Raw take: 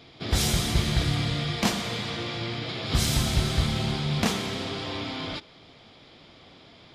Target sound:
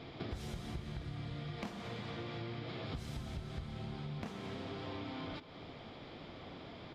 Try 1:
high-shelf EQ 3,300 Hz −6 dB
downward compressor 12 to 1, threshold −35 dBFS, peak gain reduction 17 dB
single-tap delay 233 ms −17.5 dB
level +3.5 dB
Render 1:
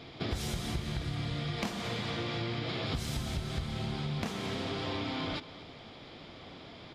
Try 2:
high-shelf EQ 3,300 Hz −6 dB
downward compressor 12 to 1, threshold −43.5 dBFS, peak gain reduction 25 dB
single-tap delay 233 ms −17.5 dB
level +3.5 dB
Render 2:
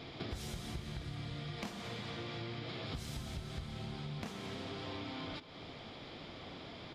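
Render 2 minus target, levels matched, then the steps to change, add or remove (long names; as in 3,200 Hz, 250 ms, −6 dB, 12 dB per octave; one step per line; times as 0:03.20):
8,000 Hz band +6.0 dB
change: high-shelf EQ 3,300 Hz −15 dB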